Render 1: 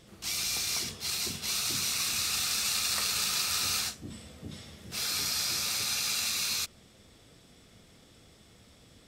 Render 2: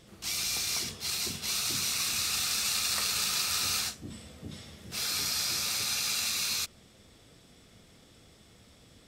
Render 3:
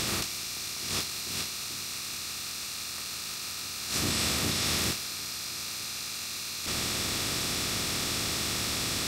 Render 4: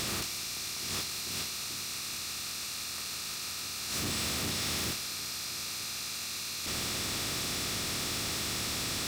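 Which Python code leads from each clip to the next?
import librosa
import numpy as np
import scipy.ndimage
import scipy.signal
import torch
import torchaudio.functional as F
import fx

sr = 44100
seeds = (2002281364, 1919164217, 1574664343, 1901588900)

y1 = x
y2 = fx.bin_compress(y1, sr, power=0.4)
y2 = fx.over_compress(y2, sr, threshold_db=-35.0, ratio=-1.0)
y2 = y2 * 10.0 ** (1.5 / 20.0)
y3 = 10.0 ** (-29.0 / 20.0) * np.tanh(y2 / 10.0 ** (-29.0 / 20.0))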